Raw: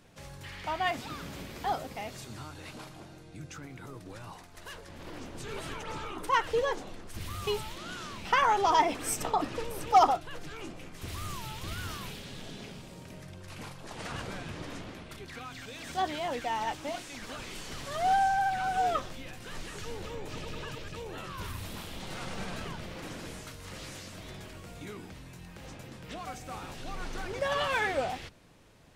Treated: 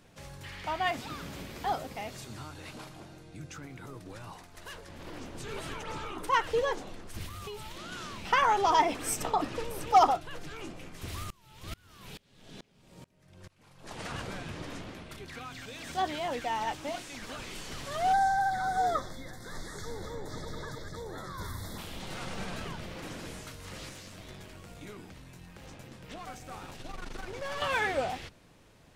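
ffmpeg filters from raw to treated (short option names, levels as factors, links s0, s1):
-filter_complex "[0:a]asettb=1/sr,asplit=3[s0][s1][s2];[s0]atrim=end=7.264[s3];[s1]atrim=start=7.26:end=7.92,asetpts=PTS-STARTPTS,afade=t=in:d=0.004:c=qsin,afade=t=out:st=0.656:d=0.004:c=qsin,acompressor=threshold=0.0126:ratio=5:attack=3.2:release=140:knee=1:detection=peak[s4];[s2]atrim=start=7.916[s5];[s3][s4]acrossfade=d=0.004:c1=hsin:c2=qsin[s6];[s6][s5]acrossfade=d=0.004:c1=qsin:c2=hsin,asplit=3[s7][s8][s9];[s7]afade=t=out:st=11.23:d=0.02[s10];[s8]aeval=exprs='val(0)*pow(10,-29*if(lt(mod(-2.3*n/s,1),2*abs(-2.3)/1000),1-mod(-2.3*n/s,1)/(2*abs(-2.3)/1000),(mod(-2.3*n/s,1)-2*abs(-2.3)/1000)/(1-2*abs(-2.3)/1000))/20)':c=same,afade=t=in:st=11.23:d=0.02,afade=t=out:st=13.86:d=0.02[s11];[s9]afade=t=in:st=13.86:d=0.02[s12];[s10][s11][s12]amix=inputs=3:normalize=0,asplit=3[s13][s14][s15];[s13]afade=t=out:st=18.12:d=0.02[s16];[s14]asuperstop=centerf=2700:order=20:qfactor=2.3,afade=t=in:st=18.12:d=0.02,afade=t=out:st=21.77:d=0.02[s17];[s15]afade=t=in:st=21.77:d=0.02[s18];[s16][s17][s18]amix=inputs=3:normalize=0,asettb=1/sr,asplit=3[s19][s20][s21];[s19]atrim=end=23.894[s22];[s20]atrim=start=23.89:end=27.62,asetpts=PTS-STARTPTS,afade=t=in:d=0.004:c=qsin,afade=t=out:st=3.726:d=0.004:c=qsin,aeval=exprs='(tanh(50.1*val(0)+0.55)-tanh(0.55))/50.1':c=same[s23];[s21]atrim=start=27.616[s24];[s22][s23]acrossfade=d=0.004:c1=hsin:c2=qsin[s25];[s25][s24]acrossfade=d=0.004:c1=qsin:c2=hsin"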